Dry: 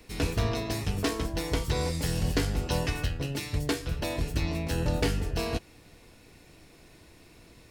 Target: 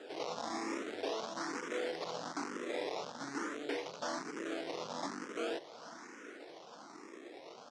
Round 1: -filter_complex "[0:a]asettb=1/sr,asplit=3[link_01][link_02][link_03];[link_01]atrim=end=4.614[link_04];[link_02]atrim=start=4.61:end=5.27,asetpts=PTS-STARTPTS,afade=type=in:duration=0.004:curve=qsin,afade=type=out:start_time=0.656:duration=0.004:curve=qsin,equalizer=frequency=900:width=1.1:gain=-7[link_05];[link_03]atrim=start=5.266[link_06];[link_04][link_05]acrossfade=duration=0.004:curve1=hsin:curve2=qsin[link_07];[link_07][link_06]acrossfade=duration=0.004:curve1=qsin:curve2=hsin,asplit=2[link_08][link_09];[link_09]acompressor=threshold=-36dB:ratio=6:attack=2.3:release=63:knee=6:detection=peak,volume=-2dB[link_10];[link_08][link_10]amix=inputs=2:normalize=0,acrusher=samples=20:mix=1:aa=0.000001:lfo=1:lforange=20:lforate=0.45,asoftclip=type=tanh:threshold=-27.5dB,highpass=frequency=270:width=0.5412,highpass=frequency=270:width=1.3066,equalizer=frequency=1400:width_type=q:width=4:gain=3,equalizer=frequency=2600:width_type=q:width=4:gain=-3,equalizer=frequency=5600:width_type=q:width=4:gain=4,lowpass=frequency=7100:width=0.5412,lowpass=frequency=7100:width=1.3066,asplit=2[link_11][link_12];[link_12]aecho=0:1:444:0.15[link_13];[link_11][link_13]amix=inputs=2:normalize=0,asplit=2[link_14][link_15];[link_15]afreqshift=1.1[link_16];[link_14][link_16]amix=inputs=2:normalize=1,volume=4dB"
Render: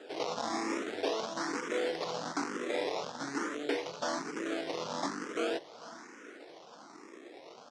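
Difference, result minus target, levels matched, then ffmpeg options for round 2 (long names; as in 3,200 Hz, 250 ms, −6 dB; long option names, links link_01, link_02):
downward compressor: peak gain reduction −7 dB; soft clipping: distortion −4 dB
-filter_complex "[0:a]asettb=1/sr,asplit=3[link_01][link_02][link_03];[link_01]atrim=end=4.614[link_04];[link_02]atrim=start=4.61:end=5.27,asetpts=PTS-STARTPTS,afade=type=in:duration=0.004:curve=qsin,afade=type=out:start_time=0.656:duration=0.004:curve=qsin,equalizer=frequency=900:width=1.1:gain=-7[link_05];[link_03]atrim=start=5.266[link_06];[link_04][link_05]acrossfade=duration=0.004:curve1=hsin:curve2=qsin[link_07];[link_07][link_06]acrossfade=duration=0.004:curve1=qsin:curve2=hsin,asplit=2[link_08][link_09];[link_09]acompressor=threshold=-44.5dB:ratio=6:attack=2.3:release=63:knee=6:detection=peak,volume=-2dB[link_10];[link_08][link_10]amix=inputs=2:normalize=0,acrusher=samples=20:mix=1:aa=0.000001:lfo=1:lforange=20:lforate=0.45,asoftclip=type=tanh:threshold=-34.5dB,highpass=frequency=270:width=0.5412,highpass=frequency=270:width=1.3066,equalizer=frequency=1400:width_type=q:width=4:gain=3,equalizer=frequency=2600:width_type=q:width=4:gain=-3,equalizer=frequency=5600:width_type=q:width=4:gain=4,lowpass=frequency=7100:width=0.5412,lowpass=frequency=7100:width=1.3066,asplit=2[link_11][link_12];[link_12]aecho=0:1:444:0.15[link_13];[link_11][link_13]amix=inputs=2:normalize=0,asplit=2[link_14][link_15];[link_15]afreqshift=1.1[link_16];[link_14][link_16]amix=inputs=2:normalize=1,volume=4dB"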